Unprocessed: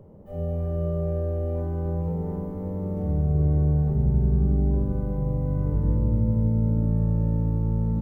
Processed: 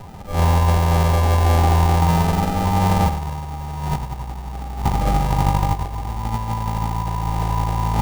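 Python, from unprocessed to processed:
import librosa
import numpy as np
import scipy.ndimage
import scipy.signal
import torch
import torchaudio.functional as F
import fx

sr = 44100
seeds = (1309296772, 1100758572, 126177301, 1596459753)

y = fx.low_shelf(x, sr, hz=190.0, db=10.5)
y = fx.over_compress(y, sr, threshold_db=-19.0, ratio=-0.5)
y = fx.mod_noise(y, sr, seeds[0], snr_db=14)
y = fx.vibrato(y, sr, rate_hz=1.6, depth_cents=5.2)
y = fx.sample_hold(y, sr, seeds[1], rate_hz=1100.0, jitter_pct=0)
y = fx.small_body(y, sr, hz=(800.0, 1200.0), ring_ms=75, db=18)
y = fx.formant_shift(y, sr, semitones=-3)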